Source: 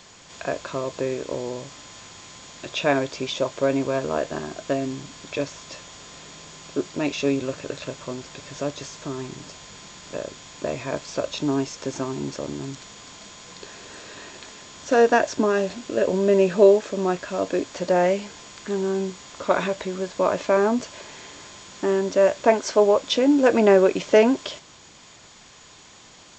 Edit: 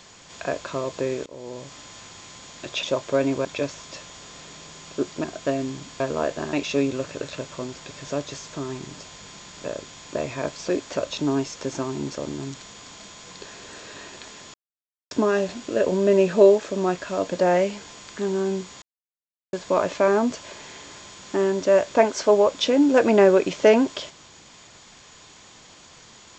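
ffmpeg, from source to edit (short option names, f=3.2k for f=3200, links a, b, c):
-filter_complex "[0:a]asplit=14[a][b][c][d][e][f][g][h][i][j][k][l][m][n];[a]atrim=end=1.26,asetpts=PTS-STARTPTS,afade=t=out:st=1.256:d=0.004:c=hsin:silence=0.105925[o];[b]atrim=start=1.26:end=2.832,asetpts=PTS-STARTPTS,afade=t=in:d=0.5:silence=0.105925[p];[c]atrim=start=3.318:end=3.942[q];[d]atrim=start=5.228:end=7.022[r];[e]atrim=start=4.468:end=5.232[s];[f]atrim=start=3.938:end=4.472[t];[g]atrim=start=7.018:end=11.182[u];[h]atrim=start=17.528:end=17.812[v];[i]atrim=start=11.178:end=14.75,asetpts=PTS-STARTPTS,afade=t=out:st=3.568:d=0.004:c=hsin[w];[j]atrim=start=14.75:end=15.32,asetpts=PTS-STARTPTS,volume=0[x];[k]atrim=start=15.32:end=17.532,asetpts=PTS-STARTPTS,afade=t=in:d=0.004:c=hsin[y];[l]atrim=start=17.808:end=19.31,asetpts=PTS-STARTPTS,afade=t=out:st=1.498:d=0.004:c=hsin[z];[m]atrim=start=19.31:end=20.02,asetpts=PTS-STARTPTS,volume=0[aa];[n]atrim=start=20.02,asetpts=PTS-STARTPTS,afade=t=in:d=0.004:c=hsin[ab];[o][p]concat=n=2:v=0:a=1[ac];[ac][q]acrossfade=d=0.004:c1=hsin:c2=hsin[ad];[ad][r]acrossfade=d=0.004:c1=hsin:c2=hsin[ae];[ae][s]acrossfade=d=0.004:c1=hsin:c2=hsin[af];[af][t]acrossfade=d=0.004:c1=hsin:c2=hsin[ag];[ag][u]acrossfade=d=0.004:c1=hsin:c2=hsin[ah];[ah][v]acrossfade=d=0.004:c1=hsin:c2=hsin[ai];[w][x][y]concat=n=3:v=0:a=1[aj];[ai][aj]acrossfade=d=0.004:c1=hsin:c2=hsin[ak];[z][aa][ab]concat=n=3:v=0:a=1[al];[ak][al]acrossfade=d=0.004:c1=hsin:c2=hsin"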